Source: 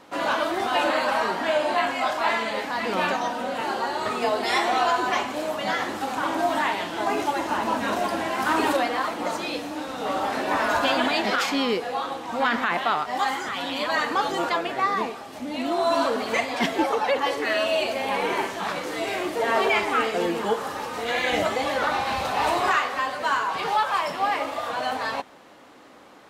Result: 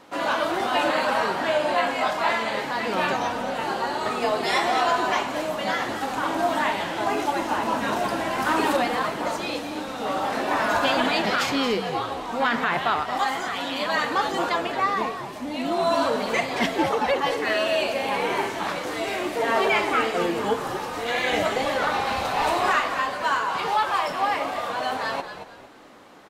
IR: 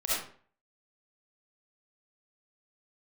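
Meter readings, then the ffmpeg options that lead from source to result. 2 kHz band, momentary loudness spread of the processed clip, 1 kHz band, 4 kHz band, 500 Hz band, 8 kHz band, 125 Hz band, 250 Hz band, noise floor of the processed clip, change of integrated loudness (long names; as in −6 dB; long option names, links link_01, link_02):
+0.5 dB, 6 LU, +0.5 dB, +0.5 dB, +0.5 dB, +0.5 dB, +3.5 dB, +0.5 dB, −35 dBFS, +0.5 dB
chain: -filter_complex "[0:a]asplit=4[link_01][link_02][link_03][link_04];[link_02]adelay=226,afreqshift=-79,volume=-10dB[link_05];[link_03]adelay=452,afreqshift=-158,volume=-20.2dB[link_06];[link_04]adelay=678,afreqshift=-237,volume=-30.3dB[link_07];[link_01][link_05][link_06][link_07]amix=inputs=4:normalize=0"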